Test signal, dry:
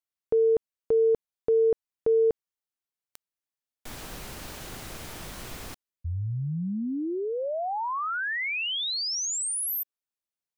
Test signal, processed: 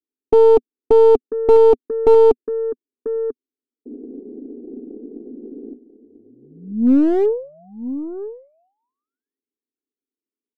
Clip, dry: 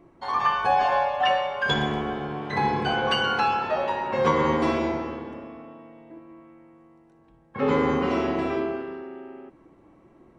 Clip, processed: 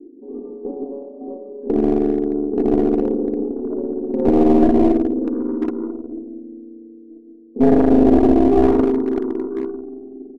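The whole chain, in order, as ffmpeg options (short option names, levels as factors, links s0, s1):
-filter_complex "[0:a]asuperpass=centerf=320:order=8:qfactor=1.7,aeval=exprs='0.168*(cos(1*acos(clip(val(0)/0.168,-1,1)))-cos(1*PI/2))+0.0168*(cos(2*acos(clip(val(0)/0.168,-1,1)))-cos(2*PI/2))+0.0422*(cos(3*acos(clip(val(0)/0.168,-1,1)))-cos(3*PI/2))+0.00376*(cos(5*acos(clip(val(0)/0.168,-1,1)))-cos(5*PI/2))+0.00299*(cos(8*acos(clip(val(0)/0.168,-1,1)))-cos(8*PI/2))':c=same,asplit=2[s0][s1];[s1]adelay=991.3,volume=0.224,highshelf=f=4000:g=-22.3[s2];[s0][s2]amix=inputs=2:normalize=0,aeval=exprs='clip(val(0),-1,0.0119)':c=same,aecho=1:1:4.2:0.34,alimiter=level_in=20:limit=0.891:release=50:level=0:latency=1,volume=0.891"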